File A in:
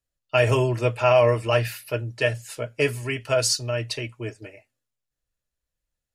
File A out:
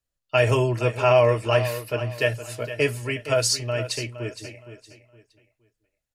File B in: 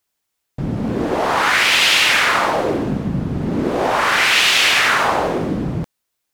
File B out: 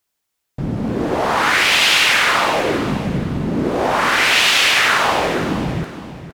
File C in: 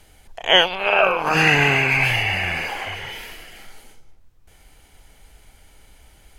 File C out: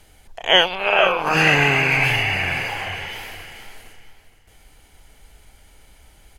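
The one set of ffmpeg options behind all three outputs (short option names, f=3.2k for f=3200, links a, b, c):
-af "aecho=1:1:465|930|1395:0.251|0.0728|0.0211"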